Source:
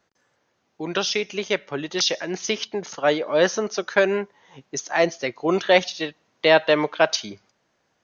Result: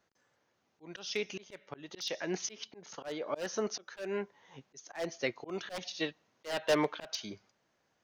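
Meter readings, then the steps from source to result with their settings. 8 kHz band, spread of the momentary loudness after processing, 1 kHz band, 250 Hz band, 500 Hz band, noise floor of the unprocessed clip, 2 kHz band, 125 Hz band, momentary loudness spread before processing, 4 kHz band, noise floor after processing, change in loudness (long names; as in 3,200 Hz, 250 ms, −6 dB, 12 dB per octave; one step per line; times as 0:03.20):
can't be measured, 17 LU, −16.0 dB, −12.5 dB, −15.5 dB, −71 dBFS, −16.5 dB, −12.5 dB, 12 LU, −14.5 dB, −77 dBFS, −14.5 dB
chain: wave folding −12 dBFS
volume swells 326 ms
level −6.5 dB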